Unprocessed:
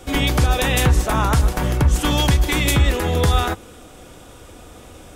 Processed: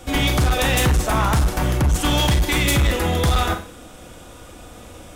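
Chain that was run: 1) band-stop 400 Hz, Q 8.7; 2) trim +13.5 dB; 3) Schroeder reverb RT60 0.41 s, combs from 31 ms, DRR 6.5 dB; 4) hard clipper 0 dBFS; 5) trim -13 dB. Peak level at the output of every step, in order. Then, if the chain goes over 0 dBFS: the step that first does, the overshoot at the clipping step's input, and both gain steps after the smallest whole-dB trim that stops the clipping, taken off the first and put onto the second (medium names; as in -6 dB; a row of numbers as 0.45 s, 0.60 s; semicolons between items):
-5.5 dBFS, +8.0 dBFS, +9.5 dBFS, 0.0 dBFS, -13.0 dBFS; step 2, 9.5 dB; step 2 +3.5 dB, step 5 -3 dB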